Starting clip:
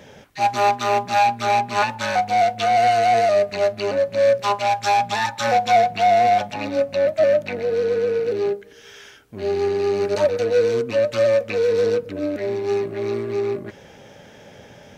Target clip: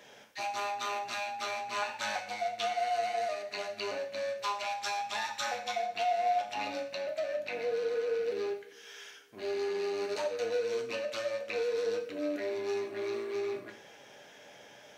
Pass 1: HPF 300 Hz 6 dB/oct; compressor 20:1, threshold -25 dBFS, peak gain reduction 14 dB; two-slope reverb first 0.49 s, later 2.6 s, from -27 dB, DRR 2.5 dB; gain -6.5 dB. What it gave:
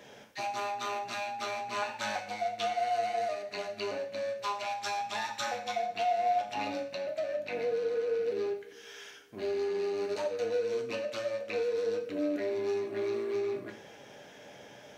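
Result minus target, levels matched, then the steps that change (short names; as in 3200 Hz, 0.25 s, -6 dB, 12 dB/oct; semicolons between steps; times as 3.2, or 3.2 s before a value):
250 Hz band +3.0 dB
change: HPF 810 Hz 6 dB/oct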